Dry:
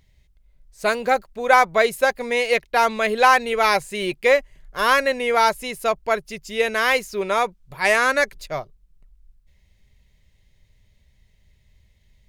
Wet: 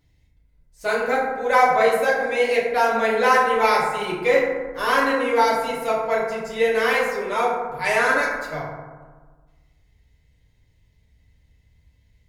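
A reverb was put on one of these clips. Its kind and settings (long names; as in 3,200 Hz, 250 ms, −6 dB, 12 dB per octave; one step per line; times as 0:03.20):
feedback delay network reverb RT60 1.4 s, low-frequency decay 1.3×, high-frequency decay 0.35×, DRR −7.5 dB
level −9 dB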